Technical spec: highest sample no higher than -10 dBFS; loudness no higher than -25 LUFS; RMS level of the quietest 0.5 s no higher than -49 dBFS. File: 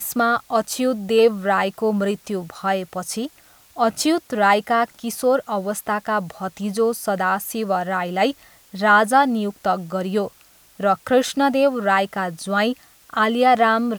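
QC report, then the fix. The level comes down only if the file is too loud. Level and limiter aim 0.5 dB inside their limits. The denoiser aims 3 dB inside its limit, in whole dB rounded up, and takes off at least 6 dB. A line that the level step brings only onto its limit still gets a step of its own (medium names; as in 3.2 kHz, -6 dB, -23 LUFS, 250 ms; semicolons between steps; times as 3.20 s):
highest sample -3.5 dBFS: fail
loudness -20.5 LUFS: fail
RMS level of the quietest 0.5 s -52 dBFS: pass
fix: trim -5 dB; peak limiter -10.5 dBFS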